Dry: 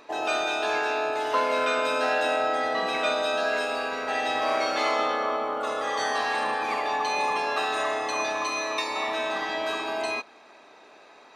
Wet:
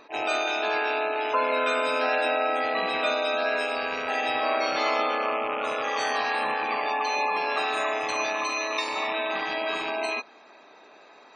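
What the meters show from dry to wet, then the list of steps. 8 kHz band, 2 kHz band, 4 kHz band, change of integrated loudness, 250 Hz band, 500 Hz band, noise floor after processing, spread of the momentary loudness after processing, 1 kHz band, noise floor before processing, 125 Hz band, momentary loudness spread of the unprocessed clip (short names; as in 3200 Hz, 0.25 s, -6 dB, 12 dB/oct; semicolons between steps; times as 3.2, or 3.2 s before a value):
-2.0 dB, +1.0 dB, 0.0 dB, 0.0 dB, -0.5 dB, 0.0 dB, -52 dBFS, 4 LU, 0.0 dB, -52 dBFS, n/a, 4 LU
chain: rattling part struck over -46 dBFS, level -22 dBFS; spectral gate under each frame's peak -25 dB strong; attack slew limiter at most 320 dB/s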